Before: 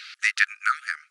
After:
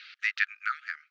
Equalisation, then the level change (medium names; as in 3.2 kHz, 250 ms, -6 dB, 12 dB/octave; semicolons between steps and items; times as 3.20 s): band-pass filter 3.3 kHz, Q 0.63; distance through air 190 m; -2.5 dB